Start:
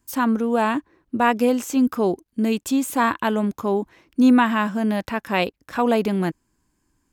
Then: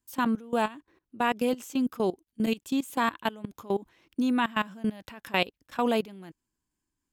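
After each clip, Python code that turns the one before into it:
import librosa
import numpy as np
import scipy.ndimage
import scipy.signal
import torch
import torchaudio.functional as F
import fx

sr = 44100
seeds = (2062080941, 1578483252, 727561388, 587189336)

y = fx.high_shelf(x, sr, hz=6000.0, db=5.0)
y = fx.level_steps(y, sr, step_db=20)
y = fx.peak_eq(y, sr, hz=3200.0, db=5.5, octaves=0.68)
y = y * 10.0 ** (-4.5 / 20.0)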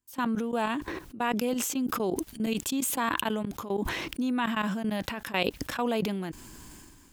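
y = fx.sustainer(x, sr, db_per_s=28.0)
y = y * 10.0 ** (-3.0 / 20.0)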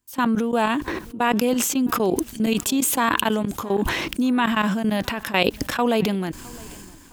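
y = fx.echo_feedback(x, sr, ms=661, feedback_pct=40, wet_db=-24.0)
y = y * 10.0 ** (8.0 / 20.0)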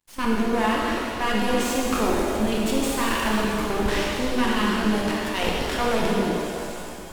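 y = fx.cvsd(x, sr, bps=64000)
y = np.maximum(y, 0.0)
y = fx.rev_shimmer(y, sr, seeds[0], rt60_s=2.4, semitones=7, shimmer_db=-8, drr_db=-3.5)
y = y * 10.0 ** (-1.5 / 20.0)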